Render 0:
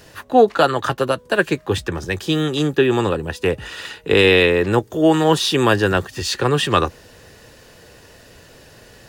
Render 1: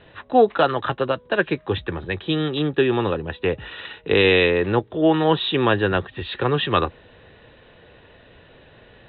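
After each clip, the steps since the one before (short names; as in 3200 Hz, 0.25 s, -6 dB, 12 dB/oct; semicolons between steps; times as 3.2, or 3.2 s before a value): Chebyshev low-pass 3900 Hz, order 8; gain -2.5 dB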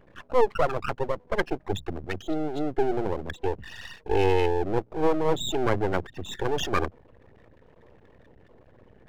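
formant sharpening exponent 3; half-wave rectifier; gain -1.5 dB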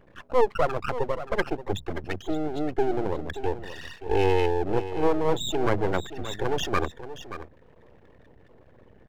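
echo 0.578 s -12.5 dB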